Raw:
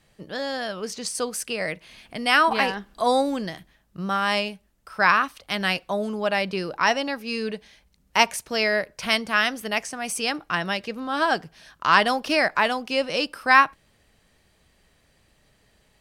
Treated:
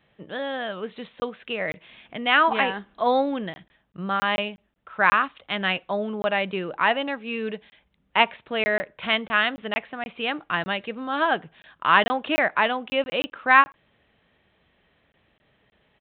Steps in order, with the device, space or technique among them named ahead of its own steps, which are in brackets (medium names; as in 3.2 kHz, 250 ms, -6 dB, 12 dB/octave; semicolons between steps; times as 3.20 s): call with lost packets (high-pass 130 Hz 6 dB/octave; resampled via 8 kHz; lost packets)